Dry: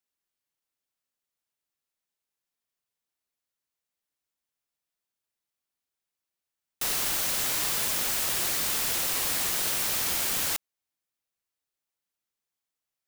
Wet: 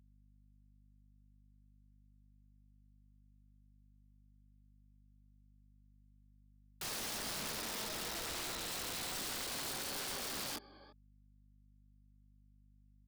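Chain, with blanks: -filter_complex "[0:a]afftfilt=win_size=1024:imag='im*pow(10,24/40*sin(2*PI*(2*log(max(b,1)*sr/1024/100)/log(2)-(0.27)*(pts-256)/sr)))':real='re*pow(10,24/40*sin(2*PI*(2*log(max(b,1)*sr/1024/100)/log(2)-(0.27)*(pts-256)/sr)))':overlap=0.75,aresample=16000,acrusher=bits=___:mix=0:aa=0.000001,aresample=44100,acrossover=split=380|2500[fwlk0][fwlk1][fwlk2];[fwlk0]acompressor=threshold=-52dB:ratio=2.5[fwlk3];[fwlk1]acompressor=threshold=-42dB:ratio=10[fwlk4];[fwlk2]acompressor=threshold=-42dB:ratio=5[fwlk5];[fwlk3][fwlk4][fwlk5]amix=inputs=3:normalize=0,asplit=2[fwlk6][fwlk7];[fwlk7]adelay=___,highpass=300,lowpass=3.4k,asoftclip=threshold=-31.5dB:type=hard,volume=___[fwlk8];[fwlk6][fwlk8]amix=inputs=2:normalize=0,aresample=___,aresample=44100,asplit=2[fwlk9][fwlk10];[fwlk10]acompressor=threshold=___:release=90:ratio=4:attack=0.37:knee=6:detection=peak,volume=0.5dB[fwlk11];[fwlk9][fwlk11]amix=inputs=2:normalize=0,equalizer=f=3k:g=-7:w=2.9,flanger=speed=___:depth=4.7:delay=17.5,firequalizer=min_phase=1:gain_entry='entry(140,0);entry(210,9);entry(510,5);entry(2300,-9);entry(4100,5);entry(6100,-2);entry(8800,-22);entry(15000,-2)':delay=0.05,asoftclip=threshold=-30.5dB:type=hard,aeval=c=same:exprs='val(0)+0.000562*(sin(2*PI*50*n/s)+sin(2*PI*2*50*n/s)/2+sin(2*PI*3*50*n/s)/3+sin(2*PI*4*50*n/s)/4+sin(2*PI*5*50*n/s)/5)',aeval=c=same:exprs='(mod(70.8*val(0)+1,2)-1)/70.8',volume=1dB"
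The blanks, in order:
6, 340, -22dB, 11025, -52dB, 2.8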